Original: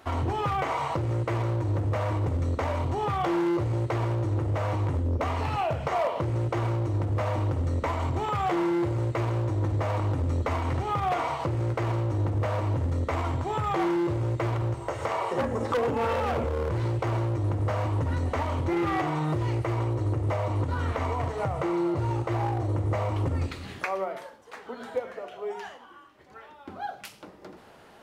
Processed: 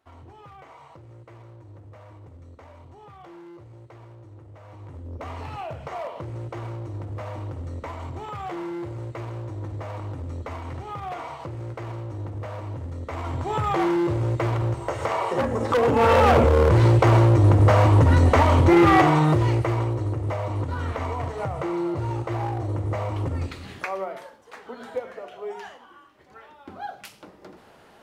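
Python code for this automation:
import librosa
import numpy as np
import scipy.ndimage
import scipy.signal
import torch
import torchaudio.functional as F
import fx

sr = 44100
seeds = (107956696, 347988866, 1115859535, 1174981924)

y = fx.gain(x, sr, db=fx.line((4.62, -19.0), (5.3, -6.5), (13.0, -6.5), (13.56, 3.5), (15.63, 3.5), (16.22, 11.5), (19.0, 11.5), (20.13, 0.0)))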